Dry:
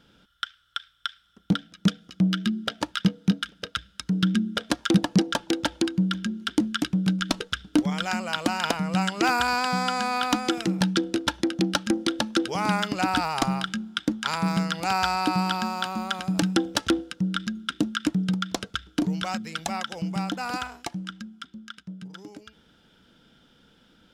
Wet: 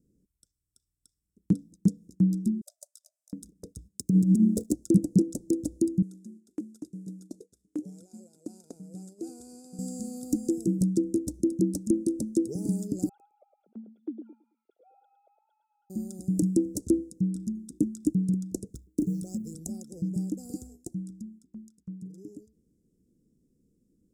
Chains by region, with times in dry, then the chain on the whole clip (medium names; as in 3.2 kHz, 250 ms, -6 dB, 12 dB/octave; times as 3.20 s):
2.61–3.33 s: brick-wall FIR high-pass 560 Hz + peaking EQ 900 Hz -9 dB 0.29 oct
3.88–4.73 s: high-pass 84 Hz 24 dB/octave + waveshaping leveller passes 2 + compressor with a negative ratio -18 dBFS, ratio -0.5
6.02–9.79 s: CVSD coder 64 kbps + band-pass filter 1.8 kHz, Q 0.64
13.09–15.90 s: formants replaced by sine waves + high-pass 660 Hz + feedback delay 109 ms, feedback 35%, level -7.5 dB
18.75–19.55 s: companding laws mixed up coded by A + three bands compressed up and down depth 70%
whole clip: elliptic band-stop 390–7500 Hz, stop band 50 dB; gate -49 dBFS, range -7 dB